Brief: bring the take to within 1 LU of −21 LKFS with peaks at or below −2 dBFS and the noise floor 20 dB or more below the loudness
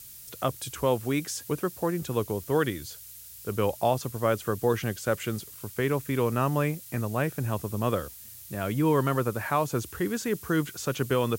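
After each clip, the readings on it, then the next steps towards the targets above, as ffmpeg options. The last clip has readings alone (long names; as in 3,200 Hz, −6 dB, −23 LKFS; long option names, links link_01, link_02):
background noise floor −46 dBFS; target noise floor −49 dBFS; integrated loudness −28.5 LKFS; sample peak −11.0 dBFS; target loudness −21.0 LKFS
→ -af "afftdn=noise_reduction=6:noise_floor=-46"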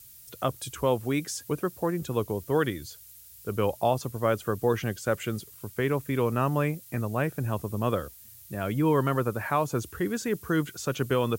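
background noise floor −50 dBFS; integrated loudness −29.0 LKFS; sample peak −11.0 dBFS; target loudness −21.0 LKFS
→ -af "volume=8dB"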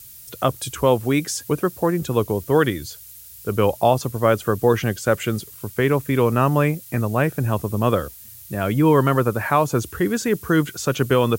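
integrated loudness −21.0 LKFS; sample peak −3.0 dBFS; background noise floor −42 dBFS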